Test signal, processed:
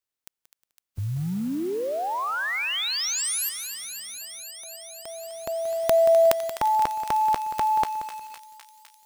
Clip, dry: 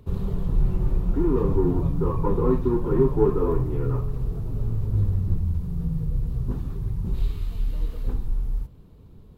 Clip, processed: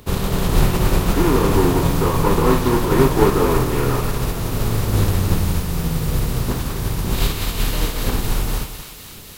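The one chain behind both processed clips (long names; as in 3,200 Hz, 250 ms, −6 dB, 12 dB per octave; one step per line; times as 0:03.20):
compressing power law on the bin magnitudes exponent 0.57
feedback echo with a high-pass in the loop 254 ms, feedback 85%, high-pass 1,100 Hz, level −10.5 dB
feedback echo at a low word length 180 ms, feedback 35%, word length 7 bits, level −12 dB
level +5 dB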